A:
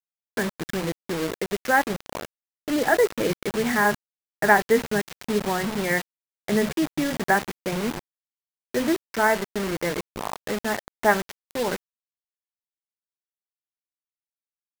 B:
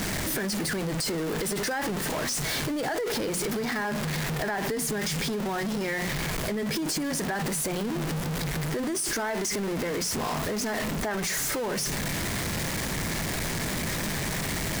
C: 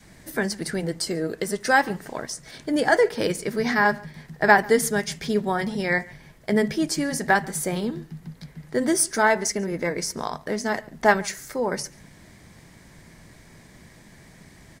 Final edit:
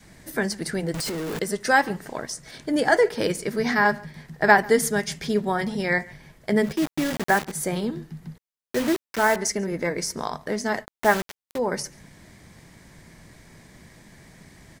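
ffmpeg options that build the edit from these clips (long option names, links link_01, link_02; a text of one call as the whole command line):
ffmpeg -i take0.wav -i take1.wav -i take2.wav -filter_complex "[0:a]asplit=3[link_01][link_02][link_03];[2:a]asplit=5[link_04][link_05][link_06][link_07][link_08];[link_04]atrim=end=0.942[link_09];[1:a]atrim=start=0.938:end=1.392[link_10];[link_05]atrim=start=1.388:end=6.84[link_11];[link_01]atrim=start=6.6:end=7.63[link_12];[link_06]atrim=start=7.39:end=8.382[link_13];[link_02]atrim=start=8.378:end=9.362[link_14];[link_07]atrim=start=9.358:end=10.86[link_15];[link_03]atrim=start=10.82:end=11.59[link_16];[link_08]atrim=start=11.55[link_17];[link_09][link_10]acrossfade=duration=0.004:curve1=hsin:curve2=hsin[link_18];[link_18][link_11]acrossfade=duration=0.004:curve1=hsin:curve2=hsin[link_19];[link_19][link_12]acrossfade=duration=0.24:curve1=tri:curve2=tri[link_20];[link_20][link_13]acrossfade=duration=0.24:curve1=tri:curve2=tri[link_21];[link_21][link_14]acrossfade=duration=0.004:curve1=hsin:curve2=hsin[link_22];[link_22][link_15]acrossfade=duration=0.004:curve1=hsin:curve2=hsin[link_23];[link_23][link_16]acrossfade=duration=0.04:curve1=tri:curve2=tri[link_24];[link_24][link_17]acrossfade=duration=0.04:curve1=tri:curve2=tri" out.wav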